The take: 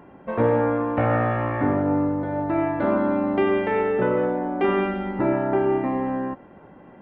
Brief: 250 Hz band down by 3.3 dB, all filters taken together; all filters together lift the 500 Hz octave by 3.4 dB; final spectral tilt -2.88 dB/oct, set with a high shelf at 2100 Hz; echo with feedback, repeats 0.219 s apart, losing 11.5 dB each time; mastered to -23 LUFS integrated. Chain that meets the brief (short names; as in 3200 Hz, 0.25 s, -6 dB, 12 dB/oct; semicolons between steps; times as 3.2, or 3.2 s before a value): bell 250 Hz -7 dB; bell 500 Hz +6 dB; high shelf 2100 Hz +4 dB; feedback echo 0.219 s, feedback 27%, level -11.5 dB; gain -2 dB